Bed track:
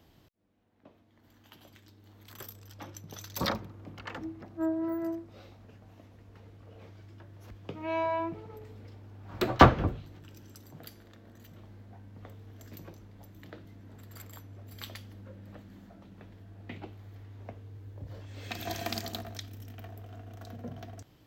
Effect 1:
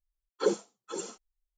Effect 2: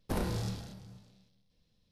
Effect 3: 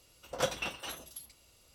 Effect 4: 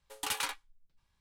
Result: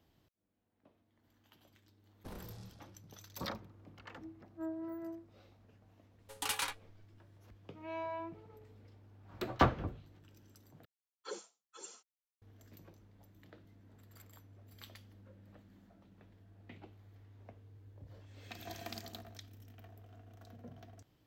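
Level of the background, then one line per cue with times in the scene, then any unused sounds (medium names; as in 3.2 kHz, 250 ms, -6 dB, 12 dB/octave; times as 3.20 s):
bed track -10.5 dB
2.15 s: add 2 -15.5 dB + treble shelf 11 kHz -6 dB
6.19 s: add 4 -2 dB
10.85 s: replace with 1 -9 dB + high-pass 1.4 kHz 6 dB/octave
not used: 3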